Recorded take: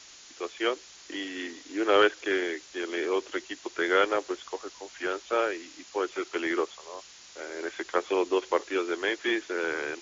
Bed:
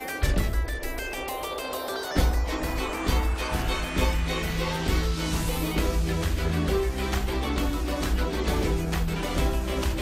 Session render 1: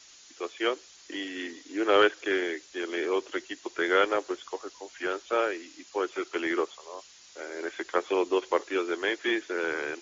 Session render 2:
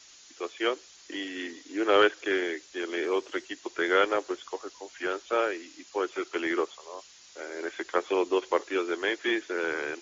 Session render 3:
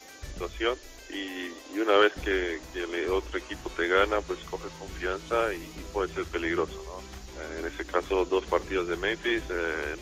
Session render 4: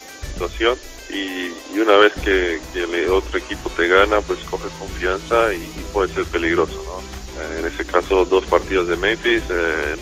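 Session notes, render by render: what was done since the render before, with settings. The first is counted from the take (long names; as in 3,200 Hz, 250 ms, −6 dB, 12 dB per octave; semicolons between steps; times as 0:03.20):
broadband denoise 6 dB, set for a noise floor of −51 dBFS
0:03.04–0:03.46: bad sample-rate conversion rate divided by 3×, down none, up filtered
mix in bed −17 dB
level +10.5 dB; brickwall limiter −1 dBFS, peak gain reduction 2.5 dB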